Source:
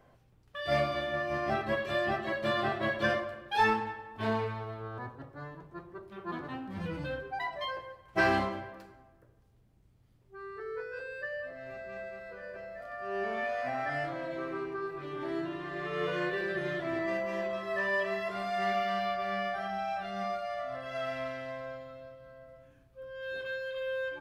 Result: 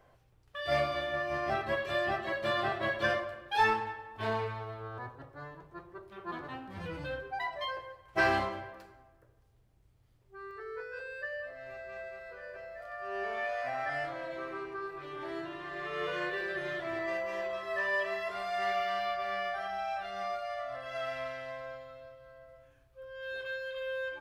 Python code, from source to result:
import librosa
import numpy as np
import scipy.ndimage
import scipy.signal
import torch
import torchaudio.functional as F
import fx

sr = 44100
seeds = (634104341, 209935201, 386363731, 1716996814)

y = fx.peak_eq(x, sr, hz=210.0, db=fx.steps((0.0, -8.5), (10.51, -15.0)), octaves=1.1)